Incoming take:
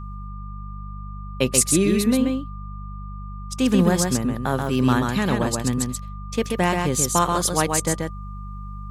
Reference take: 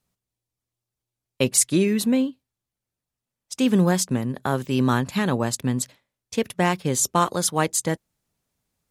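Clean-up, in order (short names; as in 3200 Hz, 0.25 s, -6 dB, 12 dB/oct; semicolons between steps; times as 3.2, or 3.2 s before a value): de-hum 49.7 Hz, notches 4; notch 1200 Hz, Q 30; inverse comb 0.133 s -4 dB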